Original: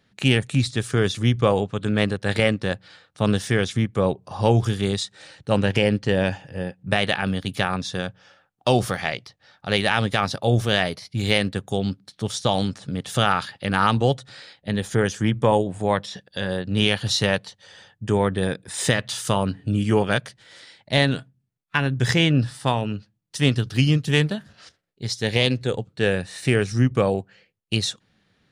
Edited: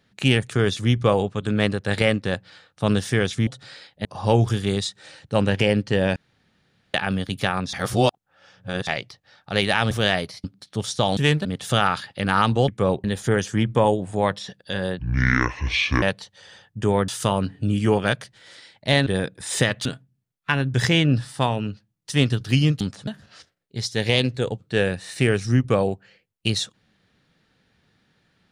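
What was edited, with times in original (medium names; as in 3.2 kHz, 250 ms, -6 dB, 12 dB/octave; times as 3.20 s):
0.51–0.89 s: delete
3.85–4.21 s: swap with 14.13–14.71 s
6.32–7.10 s: room tone
7.89–9.03 s: reverse
10.07–10.59 s: delete
11.12–11.90 s: delete
12.63–12.90 s: swap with 24.06–24.34 s
16.66–17.28 s: speed 60%
18.34–19.13 s: move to 21.11 s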